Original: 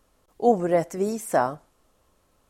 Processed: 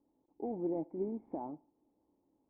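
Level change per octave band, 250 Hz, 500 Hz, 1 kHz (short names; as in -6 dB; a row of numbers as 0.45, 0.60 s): -10.0, -16.5, -21.5 dB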